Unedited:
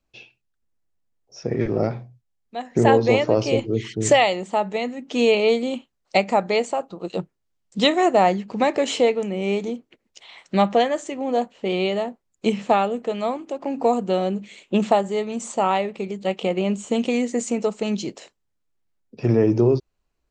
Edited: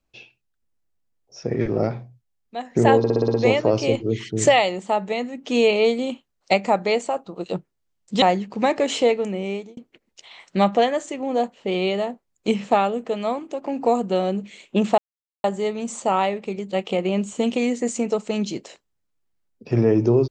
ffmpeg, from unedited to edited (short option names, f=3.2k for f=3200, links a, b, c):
-filter_complex "[0:a]asplit=10[a][b][c][d][e][f][g][h][i][j];[a]atrim=end=3.042[k];[b]atrim=start=2.978:end=3.042[l];[c]atrim=start=2.978:end=3.042[m];[d]atrim=start=2.978:end=3.042[n];[e]atrim=start=2.978:end=3.042[o];[f]atrim=start=2.978:end=3.042[p];[g]atrim=start=2.978:end=7.862[q];[h]atrim=start=8.198:end=9.75,asetpts=PTS-STARTPTS,afade=t=out:st=1.122:d=0.43[r];[i]atrim=start=9.75:end=14.96,asetpts=PTS-STARTPTS,afade=t=in:d=0.004:c=hsin,afade=t=out:st=5.206:d=0.004:c=hsin,apad=pad_dur=0.46[s];[j]atrim=start=14.96,asetpts=PTS-STARTPTS,afade=t=in:d=0.004:c=hsin[t];[k][l]acrossfade=d=0.004:c1=hsin:c2=hsin[u];[u][m]acrossfade=d=0.004:c1=hsin:c2=hsin[v];[v][n]acrossfade=d=0.004:c1=hsin:c2=hsin[w];[w][o]acrossfade=d=0.004:c1=hsin:c2=hsin[x];[x][p]acrossfade=d=0.004:c1=hsin:c2=hsin[y];[y][q]acrossfade=d=0.004:c1=hsin:c2=hsin[z];[r][s][t]concat=n=3:v=0:a=1[aa];[z][aa]acrossfade=d=0.004:c1=hsin:c2=hsin"